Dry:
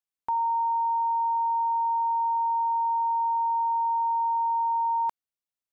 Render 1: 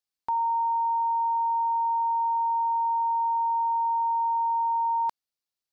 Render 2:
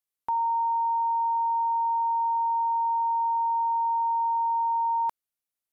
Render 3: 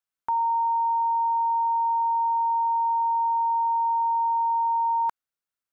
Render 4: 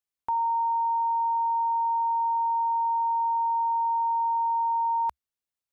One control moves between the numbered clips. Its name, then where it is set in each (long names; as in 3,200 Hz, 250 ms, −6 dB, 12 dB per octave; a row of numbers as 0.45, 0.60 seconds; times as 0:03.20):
parametric band, centre frequency: 4,600, 12,000, 1,400, 67 Hertz